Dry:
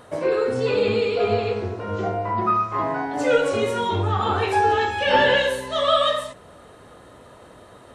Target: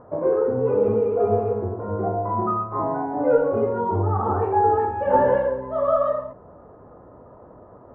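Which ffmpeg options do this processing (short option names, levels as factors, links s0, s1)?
-af "lowpass=f=1100:w=0.5412,lowpass=f=1100:w=1.3066,volume=1.12"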